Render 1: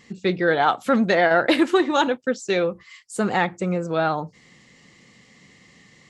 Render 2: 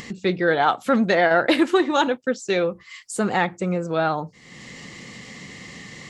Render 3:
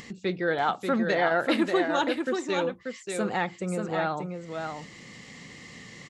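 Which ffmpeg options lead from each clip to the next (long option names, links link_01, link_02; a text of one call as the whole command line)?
ffmpeg -i in.wav -af "acompressor=mode=upward:threshold=-27dB:ratio=2.5" out.wav
ffmpeg -i in.wav -af "aecho=1:1:586:0.531,volume=-7dB" out.wav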